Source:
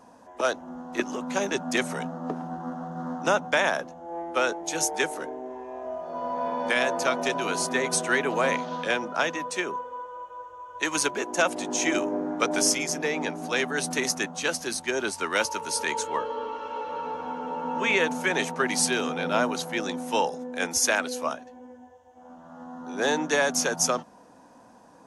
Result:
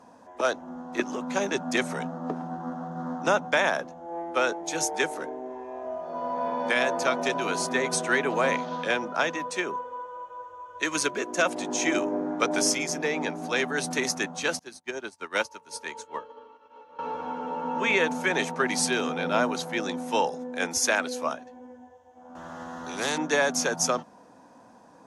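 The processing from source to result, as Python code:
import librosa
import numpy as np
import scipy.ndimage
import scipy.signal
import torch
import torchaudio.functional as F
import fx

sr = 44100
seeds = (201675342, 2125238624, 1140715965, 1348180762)

y = fx.peak_eq(x, sr, hz=840.0, db=-12.0, octaves=0.22, at=(10.66, 11.46))
y = fx.upward_expand(y, sr, threshold_db=-44.0, expansion=2.5, at=(14.59, 16.99))
y = fx.spectral_comp(y, sr, ratio=2.0, at=(22.35, 23.18))
y = scipy.signal.sosfilt(scipy.signal.butter(2, 62.0, 'highpass', fs=sr, output='sos'), y)
y = fx.high_shelf(y, sr, hz=11000.0, db=-9.5)
y = fx.notch(y, sr, hz=2900.0, q=27.0)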